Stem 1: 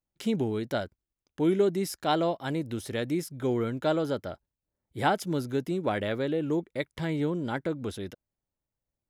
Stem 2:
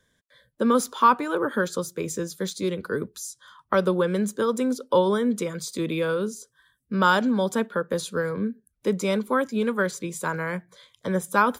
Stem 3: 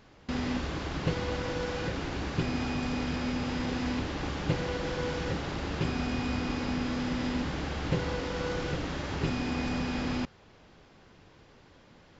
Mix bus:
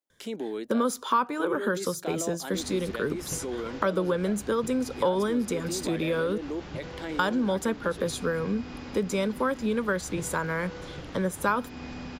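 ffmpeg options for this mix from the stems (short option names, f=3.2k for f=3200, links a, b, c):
-filter_complex "[0:a]highpass=f=260:w=0.5412,highpass=f=260:w=1.3066,volume=-1dB[a];[1:a]adelay=100,volume=2dB,asplit=3[b][c][d];[b]atrim=end=6.38,asetpts=PTS-STARTPTS,afade=t=out:st=6.376:d=0.004:c=hsin[e];[c]atrim=start=6.38:end=7.19,asetpts=PTS-STARTPTS,volume=0[f];[d]atrim=start=7.19,asetpts=PTS-STARTPTS,afade=t=in:d=0.004:c=hsin[g];[e][f][g]concat=n=3:v=0:a=1[h];[2:a]adelay=2250,volume=-7.5dB[i];[a][i]amix=inputs=2:normalize=0,volume=16dB,asoftclip=hard,volume=-16dB,alimiter=level_in=1dB:limit=-24dB:level=0:latency=1:release=23,volume=-1dB,volume=0dB[j];[h][j]amix=inputs=2:normalize=0,acompressor=threshold=-27dB:ratio=2"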